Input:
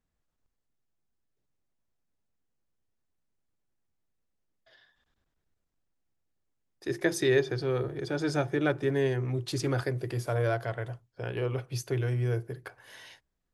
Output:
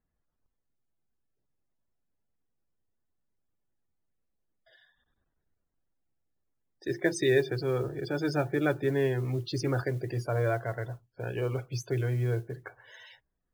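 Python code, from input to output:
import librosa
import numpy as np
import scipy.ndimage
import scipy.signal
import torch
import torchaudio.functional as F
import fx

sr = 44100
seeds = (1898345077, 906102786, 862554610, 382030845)

y = fx.spec_topn(x, sr, count=64)
y = fx.mod_noise(y, sr, seeds[0], snr_db=31)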